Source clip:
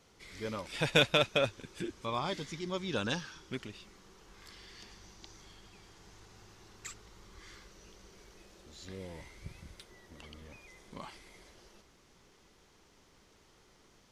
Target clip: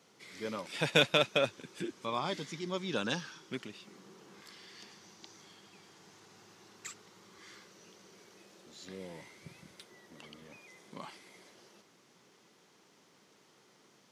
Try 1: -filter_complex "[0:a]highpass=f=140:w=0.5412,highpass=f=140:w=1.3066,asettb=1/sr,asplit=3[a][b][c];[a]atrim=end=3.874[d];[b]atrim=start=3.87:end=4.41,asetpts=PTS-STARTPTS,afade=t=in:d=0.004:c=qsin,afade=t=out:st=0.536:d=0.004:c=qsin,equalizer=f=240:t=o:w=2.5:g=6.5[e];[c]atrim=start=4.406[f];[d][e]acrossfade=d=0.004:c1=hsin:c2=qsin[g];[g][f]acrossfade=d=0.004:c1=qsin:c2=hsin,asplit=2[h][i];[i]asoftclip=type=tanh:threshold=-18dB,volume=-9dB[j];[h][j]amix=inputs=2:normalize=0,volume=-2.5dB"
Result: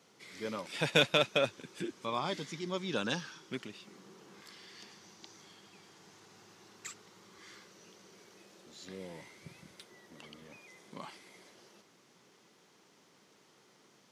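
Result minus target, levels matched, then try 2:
soft clip: distortion +10 dB
-filter_complex "[0:a]highpass=f=140:w=0.5412,highpass=f=140:w=1.3066,asettb=1/sr,asplit=3[a][b][c];[a]atrim=end=3.874[d];[b]atrim=start=3.87:end=4.41,asetpts=PTS-STARTPTS,afade=t=in:d=0.004:c=qsin,afade=t=out:st=0.536:d=0.004:c=qsin,equalizer=f=240:t=o:w=2.5:g=6.5[e];[c]atrim=start=4.406[f];[d][e]acrossfade=d=0.004:c1=hsin:c2=qsin[g];[g][f]acrossfade=d=0.004:c1=qsin:c2=hsin,asplit=2[h][i];[i]asoftclip=type=tanh:threshold=-10.5dB,volume=-9dB[j];[h][j]amix=inputs=2:normalize=0,volume=-2.5dB"

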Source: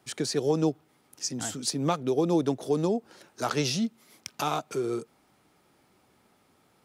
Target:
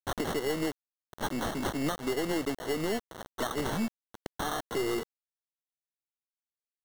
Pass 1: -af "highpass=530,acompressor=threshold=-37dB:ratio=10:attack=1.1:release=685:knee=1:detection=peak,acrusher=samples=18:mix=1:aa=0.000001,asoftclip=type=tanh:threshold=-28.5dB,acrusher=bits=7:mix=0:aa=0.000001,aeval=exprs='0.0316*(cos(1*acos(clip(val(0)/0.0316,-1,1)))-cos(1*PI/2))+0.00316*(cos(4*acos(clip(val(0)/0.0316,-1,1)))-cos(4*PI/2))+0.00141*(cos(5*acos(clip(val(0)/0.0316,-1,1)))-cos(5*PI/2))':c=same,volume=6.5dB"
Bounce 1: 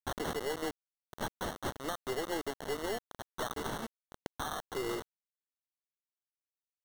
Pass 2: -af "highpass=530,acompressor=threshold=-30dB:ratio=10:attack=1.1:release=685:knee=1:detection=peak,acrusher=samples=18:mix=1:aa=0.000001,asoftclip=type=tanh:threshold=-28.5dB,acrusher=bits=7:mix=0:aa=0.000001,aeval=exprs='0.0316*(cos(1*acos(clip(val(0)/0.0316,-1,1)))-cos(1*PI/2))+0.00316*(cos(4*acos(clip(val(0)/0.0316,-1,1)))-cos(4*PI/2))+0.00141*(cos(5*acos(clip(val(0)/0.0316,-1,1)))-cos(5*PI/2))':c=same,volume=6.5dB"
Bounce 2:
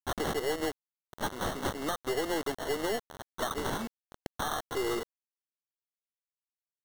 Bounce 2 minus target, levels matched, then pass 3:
250 Hz band -3.5 dB
-af "highpass=190,acompressor=threshold=-30dB:ratio=10:attack=1.1:release=685:knee=1:detection=peak,acrusher=samples=18:mix=1:aa=0.000001,asoftclip=type=tanh:threshold=-28.5dB,acrusher=bits=7:mix=0:aa=0.000001,aeval=exprs='0.0316*(cos(1*acos(clip(val(0)/0.0316,-1,1)))-cos(1*PI/2))+0.00316*(cos(4*acos(clip(val(0)/0.0316,-1,1)))-cos(4*PI/2))+0.00141*(cos(5*acos(clip(val(0)/0.0316,-1,1)))-cos(5*PI/2))':c=same,volume=6.5dB"

